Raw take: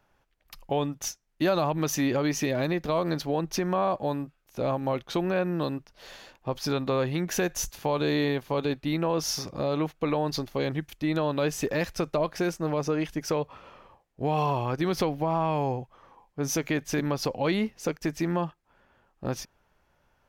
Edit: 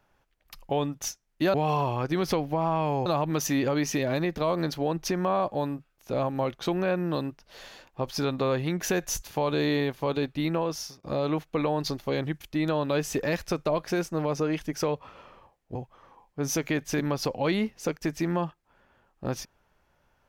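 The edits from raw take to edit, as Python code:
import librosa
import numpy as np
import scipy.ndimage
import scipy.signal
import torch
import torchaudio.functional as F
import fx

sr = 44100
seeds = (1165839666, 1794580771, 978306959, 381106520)

y = fx.edit(x, sr, fx.fade_out_span(start_s=9.03, length_s=0.48),
    fx.move(start_s=14.23, length_s=1.52, to_s=1.54), tone=tone)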